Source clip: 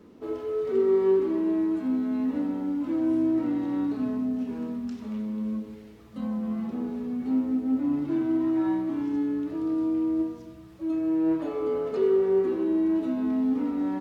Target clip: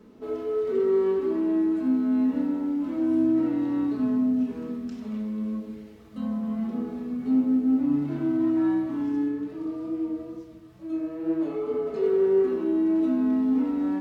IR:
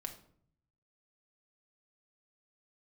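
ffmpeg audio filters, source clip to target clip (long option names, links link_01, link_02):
-filter_complex "[0:a]asplit=3[link_01][link_02][link_03];[link_01]afade=type=out:start_time=9.28:duration=0.02[link_04];[link_02]flanger=delay=18:depth=5.5:speed=2.2,afade=type=in:start_time=9.28:duration=0.02,afade=type=out:start_time=12.02:duration=0.02[link_05];[link_03]afade=type=in:start_time=12.02:duration=0.02[link_06];[link_04][link_05][link_06]amix=inputs=3:normalize=0[link_07];[1:a]atrim=start_sample=2205[link_08];[link_07][link_08]afir=irnorm=-1:irlink=0,volume=2.5dB"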